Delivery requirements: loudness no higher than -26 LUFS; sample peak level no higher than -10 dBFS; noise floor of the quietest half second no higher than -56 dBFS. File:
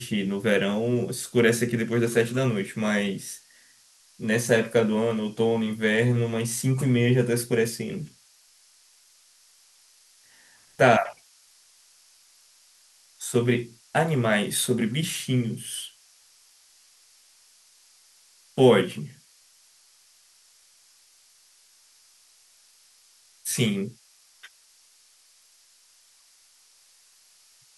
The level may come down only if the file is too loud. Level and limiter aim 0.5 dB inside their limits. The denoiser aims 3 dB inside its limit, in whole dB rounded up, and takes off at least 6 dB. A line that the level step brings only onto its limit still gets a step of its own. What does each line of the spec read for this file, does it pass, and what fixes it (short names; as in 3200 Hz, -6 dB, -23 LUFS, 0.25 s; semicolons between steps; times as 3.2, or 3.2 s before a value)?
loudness -24.5 LUFS: fail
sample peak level -4.5 dBFS: fail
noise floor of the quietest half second -59 dBFS: OK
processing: gain -2 dB; limiter -10.5 dBFS